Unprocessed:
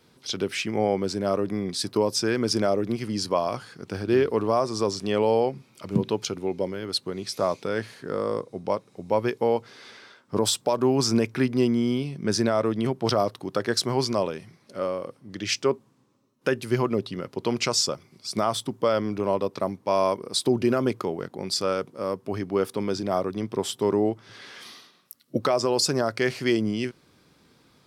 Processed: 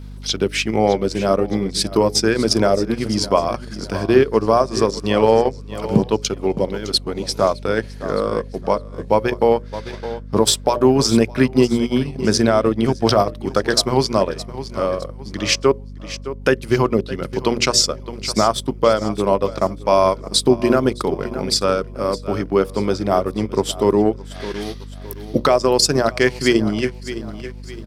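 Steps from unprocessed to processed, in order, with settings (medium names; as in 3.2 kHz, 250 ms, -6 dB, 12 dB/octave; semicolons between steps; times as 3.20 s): hum notches 60/120/180/240/300/360/420/480/540/600 Hz; feedback delay 613 ms, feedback 40%, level -13 dB; transient shaper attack +1 dB, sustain -11 dB; hum 50 Hz, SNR 15 dB; trim +8 dB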